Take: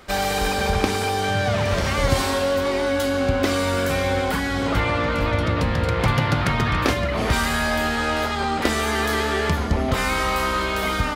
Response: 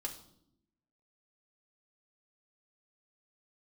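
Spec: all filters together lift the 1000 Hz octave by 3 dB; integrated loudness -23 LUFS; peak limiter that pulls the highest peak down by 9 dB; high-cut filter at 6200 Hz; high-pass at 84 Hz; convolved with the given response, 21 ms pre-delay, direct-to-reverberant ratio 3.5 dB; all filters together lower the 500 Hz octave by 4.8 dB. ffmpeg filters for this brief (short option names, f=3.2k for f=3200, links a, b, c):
-filter_complex "[0:a]highpass=84,lowpass=6.2k,equalizer=f=500:t=o:g=-7.5,equalizer=f=1k:t=o:g=6,alimiter=limit=-14.5dB:level=0:latency=1,asplit=2[a][b];[1:a]atrim=start_sample=2205,adelay=21[c];[b][c]afir=irnorm=-1:irlink=0,volume=-2.5dB[d];[a][d]amix=inputs=2:normalize=0,volume=-1dB"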